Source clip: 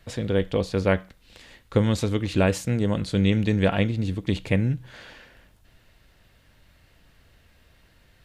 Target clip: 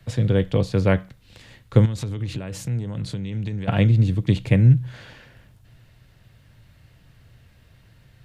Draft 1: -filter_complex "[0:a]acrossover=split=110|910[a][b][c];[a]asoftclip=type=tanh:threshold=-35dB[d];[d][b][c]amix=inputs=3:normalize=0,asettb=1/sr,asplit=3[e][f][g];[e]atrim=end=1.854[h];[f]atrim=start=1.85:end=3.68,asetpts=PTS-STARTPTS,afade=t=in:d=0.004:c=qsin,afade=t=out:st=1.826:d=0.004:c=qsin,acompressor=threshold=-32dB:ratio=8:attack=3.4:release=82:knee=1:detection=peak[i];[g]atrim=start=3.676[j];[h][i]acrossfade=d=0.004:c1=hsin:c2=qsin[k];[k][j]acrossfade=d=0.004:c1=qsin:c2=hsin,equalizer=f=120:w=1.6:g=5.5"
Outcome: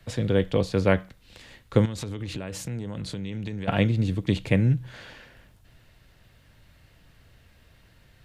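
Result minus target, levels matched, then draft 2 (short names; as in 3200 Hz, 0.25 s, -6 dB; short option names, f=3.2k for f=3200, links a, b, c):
125 Hz band -2.5 dB
-filter_complex "[0:a]acrossover=split=110|910[a][b][c];[a]asoftclip=type=tanh:threshold=-35dB[d];[d][b][c]amix=inputs=3:normalize=0,asettb=1/sr,asplit=3[e][f][g];[e]atrim=end=1.854[h];[f]atrim=start=1.85:end=3.68,asetpts=PTS-STARTPTS,afade=t=in:d=0.004:c=qsin,afade=t=out:st=1.826:d=0.004:c=qsin,acompressor=threshold=-32dB:ratio=8:attack=3.4:release=82:knee=1:detection=peak[i];[g]atrim=start=3.676[j];[h][i]acrossfade=d=0.004:c1=hsin:c2=qsin[k];[k][j]acrossfade=d=0.004:c1=qsin:c2=hsin,equalizer=f=120:w=1.6:g=14.5"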